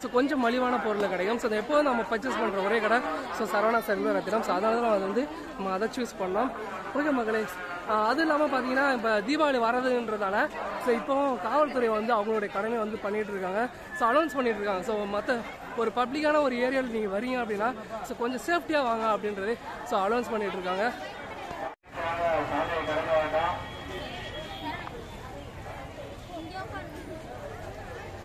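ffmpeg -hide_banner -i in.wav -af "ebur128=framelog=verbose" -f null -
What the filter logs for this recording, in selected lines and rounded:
Integrated loudness:
  I:         -28.2 LUFS
  Threshold: -38.6 LUFS
Loudness range:
  LRA:         5.8 LU
  Threshold: -48.6 LUFS
  LRA low:   -32.3 LUFS
  LRA high:  -26.5 LUFS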